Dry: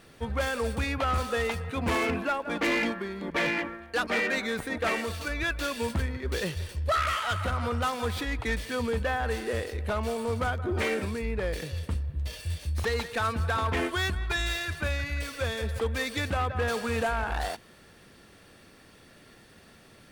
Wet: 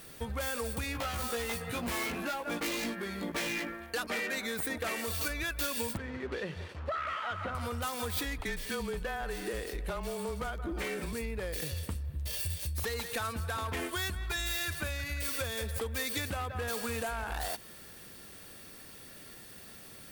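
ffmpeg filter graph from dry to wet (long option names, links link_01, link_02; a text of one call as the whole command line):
ffmpeg -i in.wav -filter_complex "[0:a]asettb=1/sr,asplit=3[link_01][link_02][link_03];[link_01]atrim=end=0.934[link_04];[link_02]atrim=start=0.93:end=3.72,asetpts=PTS-STARTPTS,afade=type=in:duration=0.004:curve=qsin,afade=type=out:start_time=2.786:duration=0.004:curve=qsin,asoftclip=type=hard:threshold=-27.5dB,asplit=2[link_05][link_06];[link_06]adelay=17,volume=-2dB[link_07];[link_05][link_07]amix=inputs=2:normalize=0,atrim=end_sample=123039[link_08];[link_03]atrim=start=3.716[link_09];[link_04][link_08]acrossfade=duration=0.004:curve1=hsin:curve2=qsin[link_10];[link_10][link_09]acrossfade=duration=0.004:curve1=qsin:curve2=hsin,asettb=1/sr,asplit=3[link_11][link_12][link_13];[link_11]atrim=end=5.974[link_14];[link_12]atrim=start=5.97:end=7.55,asetpts=PTS-STARTPTS,afade=type=in:duration=0.004:curve=qsin,afade=type=out:start_time=1.576:duration=0.004:curve=qsin,bandreject=frequency=60:width_type=h:width=6,bandreject=frequency=120:width_type=h:width=6,bandreject=frequency=180:width_type=h:width=6,acrusher=bits=6:mix=0:aa=0.5,highpass=130,lowpass=2100[link_15];[link_13]atrim=start=7.546[link_16];[link_14][link_15]acrossfade=duration=0.004:curve1=hsin:curve2=qsin[link_17];[link_17][link_16]acrossfade=duration=0.004:curve1=qsin:curve2=hsin,asettb=1/sr,asplit=3[link_18][link_19][link_20];[link_18]atrim=end=8.384[link_21];[link_19]atrim=start=8.38:end=11.13,asetpts=PTS-STARTPTS,afade=type=in:duration=0.004:curve=qsin,afade=type=out:start_time=2.746:duration=0.004:curve=qsin,highshelf=frequency=6900:gain=-7,afreqshift=-26[link_22];[link_20]atrim=start=11.126[link_23];[link_21][link_22]acrossfade=duration=0.004:curve1=hsin:curve2=qsin[link_24];[link_24][link_23]acrossfade=duration=0.004:curve1=qsin:curve2=hsin,acompressor=threshold=-33dB:ratio=6,aemphasis=mode=production:type=50fm" out.wav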